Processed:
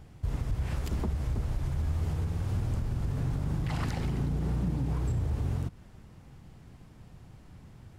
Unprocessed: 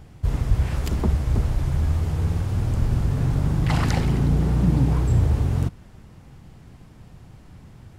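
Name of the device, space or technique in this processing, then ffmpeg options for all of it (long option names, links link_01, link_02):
clipper into limiter: -af "asoftclip=type=hard:threshold=-9.5dB,alimiter=limit=-17dB:level=0:latency=1:release=117,volume=-5.5dB"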